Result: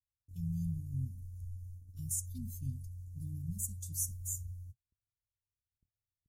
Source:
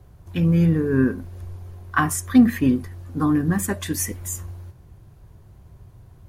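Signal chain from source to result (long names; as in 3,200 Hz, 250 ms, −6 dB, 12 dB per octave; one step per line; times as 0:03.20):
elliptic band-stop filter 120–6,600 Hz, stop band 60 dB
noise gate −39 dBFS, range −43 dB
level −8 dB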